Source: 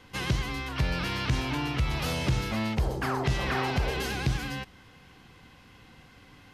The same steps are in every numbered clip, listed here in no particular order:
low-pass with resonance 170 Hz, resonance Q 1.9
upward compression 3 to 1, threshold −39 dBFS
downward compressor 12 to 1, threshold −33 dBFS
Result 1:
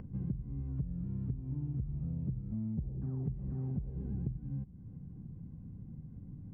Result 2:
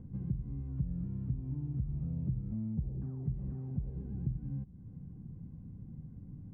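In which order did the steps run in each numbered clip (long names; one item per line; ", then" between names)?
low-pass with resonance, then downward compressor, then upward compression
downward compressor, then upward compression, then low-pass with resonance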